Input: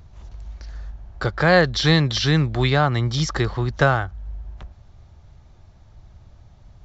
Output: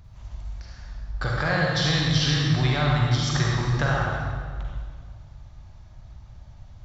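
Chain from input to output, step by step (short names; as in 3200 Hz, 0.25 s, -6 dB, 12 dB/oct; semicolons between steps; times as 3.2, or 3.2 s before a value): bell 400 Hz -8 dB 0.83 oct; compressor, threshold -20 dBFS, peak gain reduction 9 dB; reverb RT60 1.8 s, pre-delay 40 ms, DRR -3 dB; gain -3 dB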